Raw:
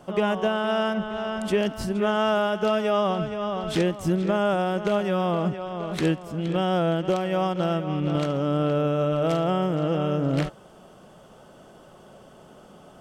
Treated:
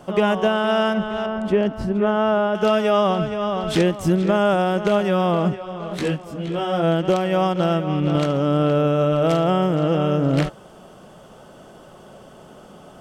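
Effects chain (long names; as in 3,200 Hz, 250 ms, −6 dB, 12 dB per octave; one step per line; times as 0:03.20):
0:01.26–0:02.55: low-pass filter 1,200 Hz 6 dB per octave
0:05.54–0:06.82: micro pitch shift up and down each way 34 cents → 16 cents
level +5 dB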